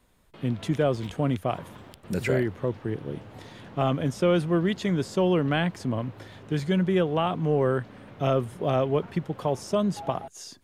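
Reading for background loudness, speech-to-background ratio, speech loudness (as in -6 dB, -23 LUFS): -46.5 LUFS, 19.5 dB, -27.0 LUFS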